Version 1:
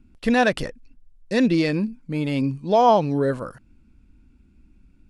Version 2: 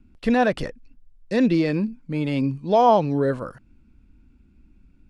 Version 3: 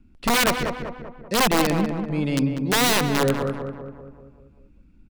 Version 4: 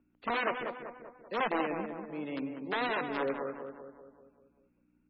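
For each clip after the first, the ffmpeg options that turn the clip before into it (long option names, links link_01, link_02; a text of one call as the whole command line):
ffmpeg -i in.wav -filter_complex "[0:a]highshelf=frequency=7500:gain=-9.5,acrossover=split=470|1300[link_01][link_02][link_03];[link_03]alimiter=level_in=0.5dB:limit=-24dB:level=0:latency=1:release=12,volume=-0.5dB[link_04];[link_01][link_02][link_04]amix=inputs=3:normalize=0" out.wav
ffmpeg -i in.wav -filter_complex "[0:a]aeval=exprs='(mod(5.01*val(0)+1,2)-1)/5.01':channel_layout=same,asplit=2[link_01][link_02];[link_02]adelay=194,lowpass=frequency=1700:poles=1,volume=-5.5dB,asplit=2[link_03][link_04];[link_04]adelay=194,lowpass=frequency=1700:poles=1,volume=0.55,asplit=2[link_05][link_06];[link_06]adelay=194,lowpass=frequency=1700:poles=1,volume=0.55,asplit=2[link_07][link_08];[link_08]adelay=194,lowpass=frequency=1700:poles=1,volume=0.55,asplit=2[link_09][link_10];[link_10]adelay=194,lowpass=frequency=1700:poles=1,volume=0.55,asplit=2[link_11][link_12];[link_12]adelay=194,lowpass=frequency=1700:poles=1,volume=0.55,asplit=2[link_13][link_14];[link_14]adelay=194,lowpass=frequency=1700:poles=1,volume=0.55[link_15];[link_03][link_05][link_07][link_09][link_11][link_13][link_15]amix=inputs=7:normalize=0[link_16];[link_01][link_16]amix=inputs=2:normalize=0" out.wav
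ffmpeg -i in.wav -filter_complex "[0:a]aeval=exprs='val(0)+0.00447*(sin(2*PI*60*n/s)+sin(2*PI*2*60*n/s)/2+sin(2*PI*3*60*n/s)/3+sin(2*PI*4*60*n/s)/4+sin(2*PI*5*60*n/s)/5)':channel_layout=same,acrossover=split=260 2800:gain=0.0631 1 0.158[link_01][link_02][link_03];[link_01][link_02][link_03]amix=inputs=3:normalize=0,volume=-9dB" -ar 22050 -c:a libmp3lame -b:a 16k out.mp3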